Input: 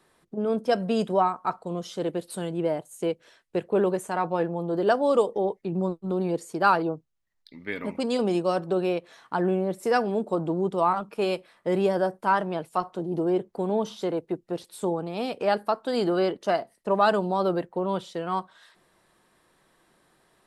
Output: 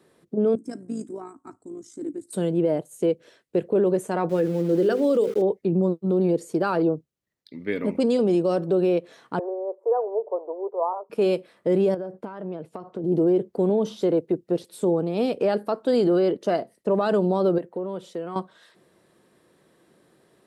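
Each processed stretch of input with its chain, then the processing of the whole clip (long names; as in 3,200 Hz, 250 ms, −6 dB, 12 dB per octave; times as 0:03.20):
0:00.55–0:02.33: drawn EQ curve 110 Hz 0 dB, 170 Hz −25 dB, 280 Hz +4 dB, 500 Hz −26 dB, 780 Hz −18 dB, 2,100 Hz −12 dB, 3,000 Hz −26 dB, 4,400 Hz −16 dB, 7,900 Hz +7 dB, 13,000 Hz −13 dB + amplitude modulation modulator 54 Hz, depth 35%
0:04.29–0:05.42: flat-topped bell 830 Hz −8.5 dB 1.1 octaves + mains-hum notches 50/100/150/200/250/300/350/400/450 Hz + centre clipping without the shift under −39.5 dBFS
0:09.39–0:11.10: elliptic band-pass filter 420–1,000 Hz, stop band 60 dB + spectral tilt +4 dB per octave
0:11.94–0:13.04: low-pass filter 2,100 Hz 6 dB per octave + downward compressor 20 to 1, threshold −33 dBFS
0:17.58–0:18.36: dynamic equaliser 4,100 Hz, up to −5 dB, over −52 dBFS, Q 1.1 + downward compressor 2 to 1, threshold −36 dBFS + high-pass filter 230 Hz 6 dB per octave
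whole clip: high-pass filter 96 Hz; low shelf with overshoot 640 Hz +6.5 dB, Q 1.5; brickwall limiter −13.5 dBFS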